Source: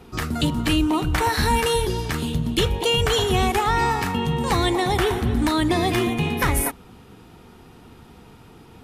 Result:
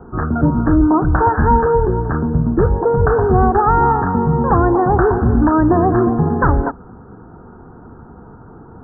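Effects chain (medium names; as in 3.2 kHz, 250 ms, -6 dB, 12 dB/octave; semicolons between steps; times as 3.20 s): steep low-pass 1.6 kHz 96 dB/octave; trim +8 dB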